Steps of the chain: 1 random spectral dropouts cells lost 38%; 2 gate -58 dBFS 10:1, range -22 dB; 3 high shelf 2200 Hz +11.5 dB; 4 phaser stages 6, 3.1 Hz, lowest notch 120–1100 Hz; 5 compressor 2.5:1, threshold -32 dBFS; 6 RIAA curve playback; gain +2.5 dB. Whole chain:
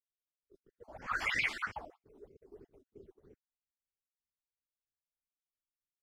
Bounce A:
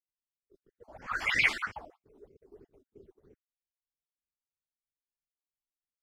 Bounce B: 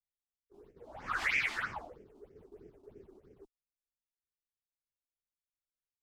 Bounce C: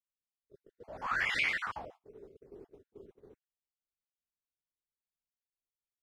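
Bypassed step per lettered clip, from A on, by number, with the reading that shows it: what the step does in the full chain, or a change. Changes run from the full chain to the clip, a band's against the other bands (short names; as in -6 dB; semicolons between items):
5, crest factor change +3.5 dB; 1, momentary loudness spread change +5 LU; 4, momentary loudness spread change +4 LU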